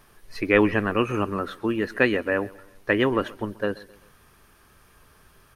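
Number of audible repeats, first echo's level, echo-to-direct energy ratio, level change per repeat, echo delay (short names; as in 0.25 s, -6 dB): 3, -21.5 dB, -20.5 dB, -6.5 dB, 0.131 s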